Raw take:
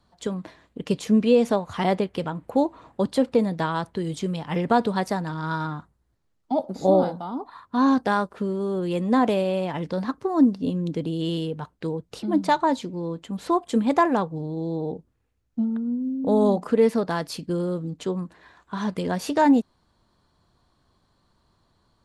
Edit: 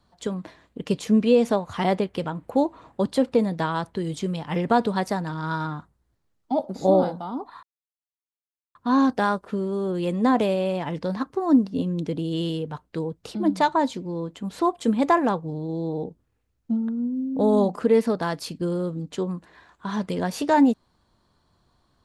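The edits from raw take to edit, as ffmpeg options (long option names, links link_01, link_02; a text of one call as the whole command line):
ffmpeg -i in.wav -filter_complex "[0:a]asplit=2[link_01][link_02];[link_01]atrim=end=7.63,asetpts=PTS-STARTPTS,afade=type=out:start_time=7.626:duration=0.004:curve=hsin,apad=pad_dur=1.12[link_03];[link_02]atrim=start=7.63,asetpts=PTS-STARTPTS,afade=type=in:duration=0.004:curve=hsin[link_04];[link_03][link_04]concat=n=2:v=0:a=1" out.wav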